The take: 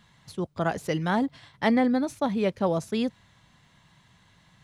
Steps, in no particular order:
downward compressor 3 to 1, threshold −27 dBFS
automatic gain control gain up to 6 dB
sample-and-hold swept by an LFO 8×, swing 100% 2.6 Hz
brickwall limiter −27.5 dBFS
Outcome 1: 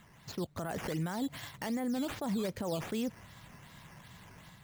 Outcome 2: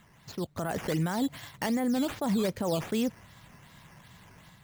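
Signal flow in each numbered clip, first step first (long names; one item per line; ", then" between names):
downward compressor, then automatic gain control, then brickwall limiter, then sample-and-hold swept by an LFO
sample-and-hold swept by an LFO, then brickwall limiter, then downward compressor, then automatic gain control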